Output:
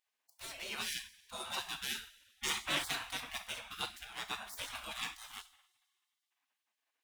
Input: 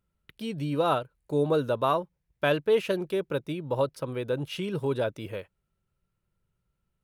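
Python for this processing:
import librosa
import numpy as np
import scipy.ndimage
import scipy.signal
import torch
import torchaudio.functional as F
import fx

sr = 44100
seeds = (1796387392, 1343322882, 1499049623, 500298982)

y = scipy.ndimage.median_filter(x, 9, mode='constant')
y = fx.rev_double_slope(y, sr, seeds[0], early_s=0.43, late_s=1.9, knee_db=-18, drr_db=4.5)
y = fx.spec_gate(y, sr, threshold_db=-30, keep='weak')
y = y * 10.0 ** (8.0 / 20.0)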